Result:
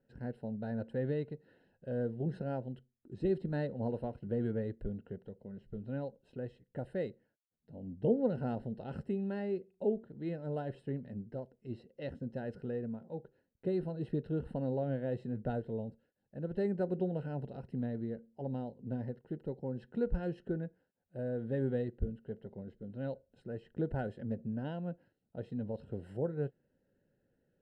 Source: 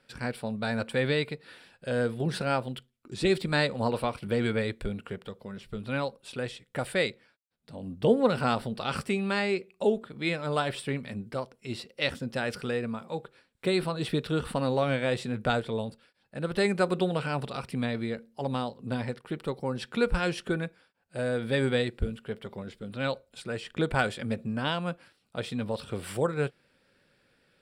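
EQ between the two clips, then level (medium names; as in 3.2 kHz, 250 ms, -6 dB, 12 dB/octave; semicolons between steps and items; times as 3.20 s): boxcar filter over 38 samples; -5.0 dB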